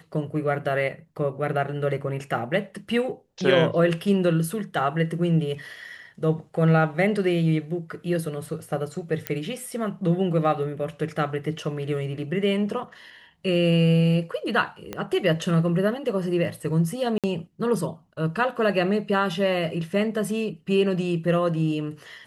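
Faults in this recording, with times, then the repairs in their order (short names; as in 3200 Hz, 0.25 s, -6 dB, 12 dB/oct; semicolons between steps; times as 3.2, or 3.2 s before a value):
9.27 pop -10 dBFS
14.93 pop -16 dBFS
17.18–17.24 gap 57 ms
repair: de-click; interpolate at 17.18, 57 ms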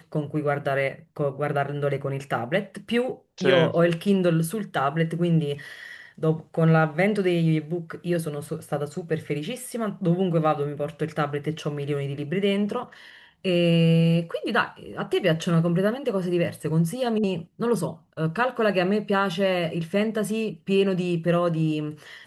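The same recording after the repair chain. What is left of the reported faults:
14.93 pop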